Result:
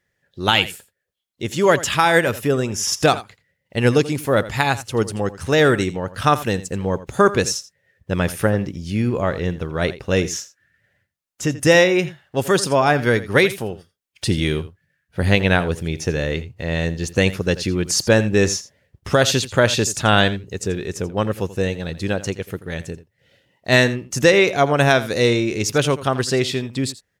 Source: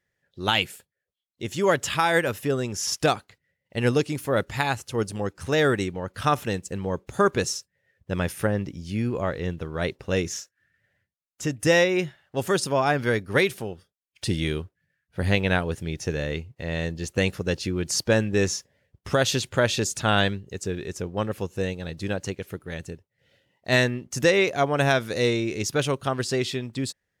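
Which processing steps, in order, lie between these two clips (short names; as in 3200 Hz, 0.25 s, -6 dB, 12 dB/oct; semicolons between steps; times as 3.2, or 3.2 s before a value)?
2.46–2.93 notch 4200 Hz, Q 5.4; on a send: echo 84 ms -16 dB; on the sum: gain +6 dB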